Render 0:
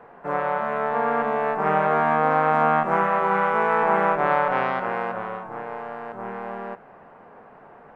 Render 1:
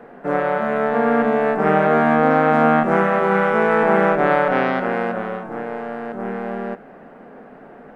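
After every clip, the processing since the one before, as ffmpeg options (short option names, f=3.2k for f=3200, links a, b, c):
-af "equalizer=f=100:t=o:w=0.67:g=-10,equalizer=f=250:t=o:w=0.67:g=7,equalizer=f=1k:t=o:w=0.67:g=-10,equalizer=f=2.5k:t=o:w=0.67:g=-3,volume=7.5dB"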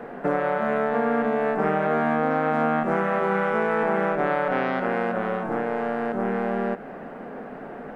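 -af "acompressor=threshold=-26dB:ratio=4,volume=4.5dB"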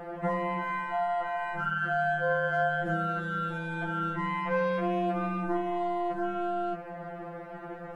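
-af "afftfilt=real='re*2.83*eq(mod(b,8),0)':imag='im*2.83*eq(mod(b,8),0)':win_size=2048:overlap=0.75"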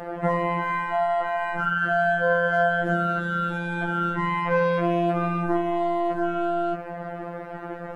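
-af "afftfilt=real='hypot(re,im)*cos(PI*b)':imag='0':win_size=1024:overlap=0.75,volume=6.5dB"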